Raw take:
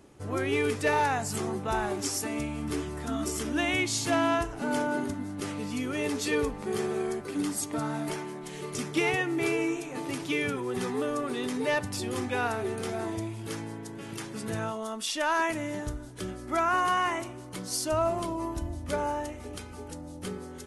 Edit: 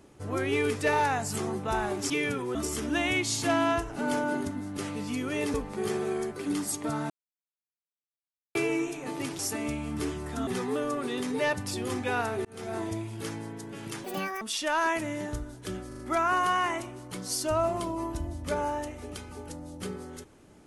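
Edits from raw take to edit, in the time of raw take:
2.10–3.18 s: swap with 10.28–10.73 s
6.17–6.43 s: delete
7.99–9.44 s: mute
12.71–13.03 s: fade in
14.30–14.95 s: speed 174%
16.41 s: stutter 0.04 s, 4 plays

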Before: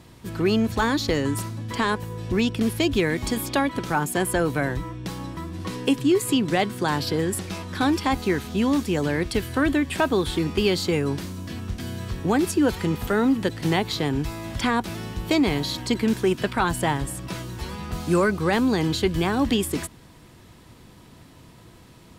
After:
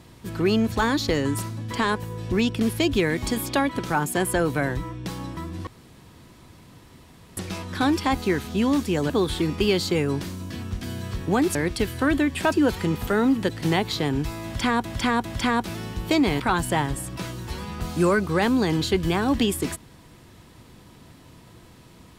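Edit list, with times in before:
5.67–7.37 s: room tone
9.10–10.07 s: move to 12.52 s
14.45–14.85 s: loop, 3 plays
15.60–16.51 s: delete

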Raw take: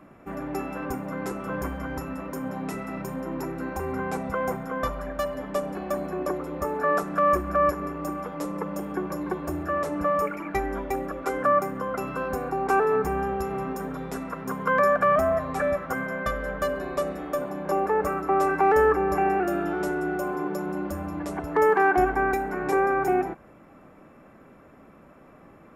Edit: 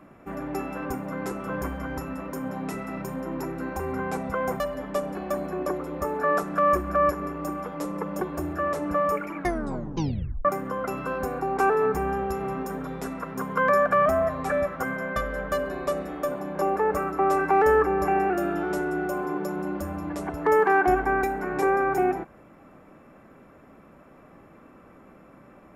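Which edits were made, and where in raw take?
4.60–5.20 s: delete
8.81–9.31 s: delete
10.47 s: tape stop 1.08 s

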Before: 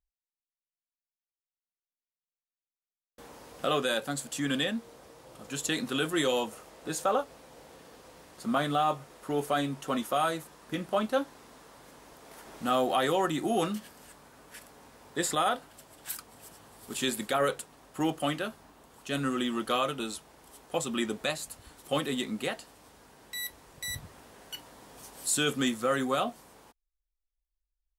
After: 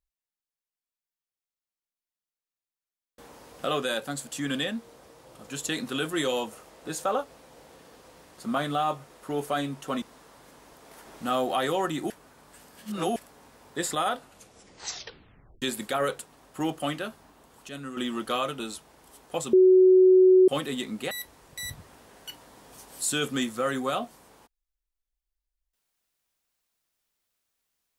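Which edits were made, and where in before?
10.02–11.42 s: delete
13.50–14.56 s: reverse
15.56 s: tape stop 1.46 s
19.09–19.37 s: gain -8 dB
20.93–21.88 s: bleep 372 Hz -13 dBFS
22.51–23.36 s: delete

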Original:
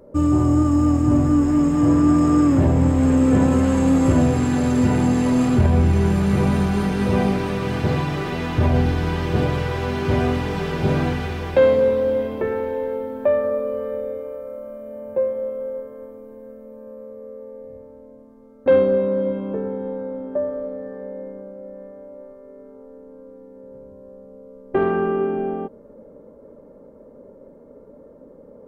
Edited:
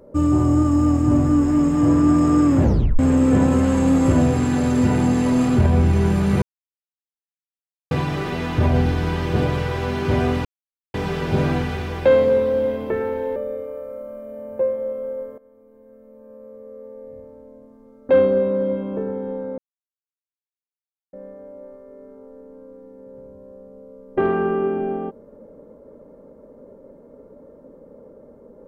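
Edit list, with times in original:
2.62 s: tape stop 0.37 s
6.42–7.91 s: mute
10.45 s: insert silence 0.49 s
12.87–13.93 s: delete
15.95–17.74 s: fade in, from -17.5 dB
20.15–21.70 s: mute

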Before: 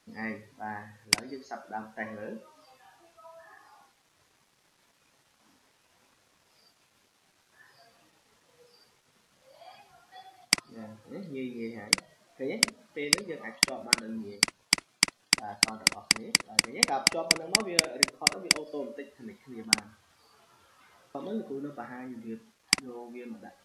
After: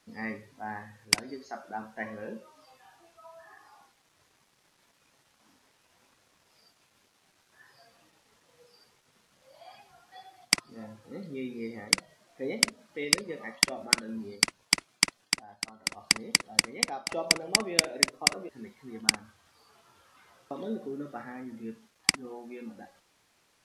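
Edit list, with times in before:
15.19–16.09 s: dip -11.5 dB, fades 0.27 s
16.60–17.09 s: fade out, to -13.5 dB
18.49–19.13 s: delete

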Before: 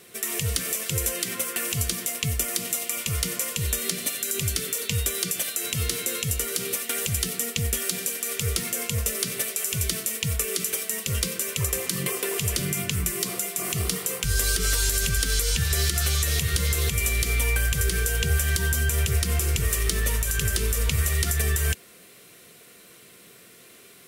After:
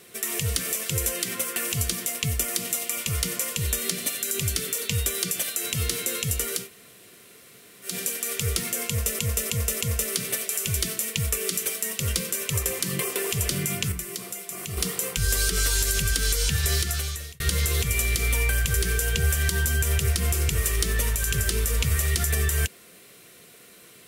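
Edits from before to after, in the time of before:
6.62–7.89 s: room tone, crossfade 0.16 s
8.88–9.19 s: loop, 4 plays
12.99–13.84 s: gain -6.5 dB
15.80–16.47 s: fade out

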